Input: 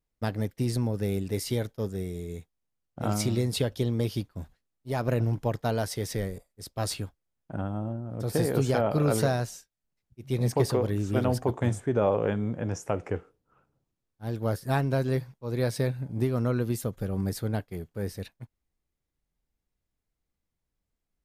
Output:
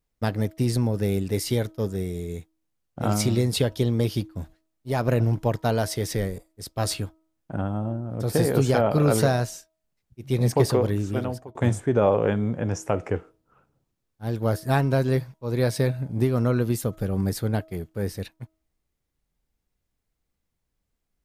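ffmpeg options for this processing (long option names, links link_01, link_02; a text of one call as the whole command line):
ffmpeg -i in.wav -filter_complex "[0:a]asplit=2[link_01][link_02];[link_01]atrim=end=11.55,asetpts=PTS-STARTPTS,afade=type=out:start_time=10.87:duration=0.68[link_03];[link_02]atrim=start=11.55,asetpts=PTS-STARTPTS,afade=type=in:duration=0.004:curve=hsin[link_04];[link_03][link_04]concat=n=2:v=0:a=1,bandreject=frequency=319.5:width_type=h:width=4,bandreject=frequency=639:width_type=h:width=4,bandreject=frequency=958.5:width_type=h:width=4,bandreject=frequency=1278:width_type=h:width=4,volume=4.5dB" out.wav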